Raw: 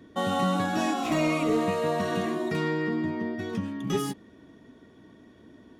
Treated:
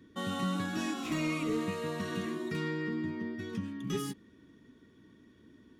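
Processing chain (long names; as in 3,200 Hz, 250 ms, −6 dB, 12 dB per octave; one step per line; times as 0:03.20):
parametric band 700 Hz −13.5 dB 0.77 octaves
level −5 dB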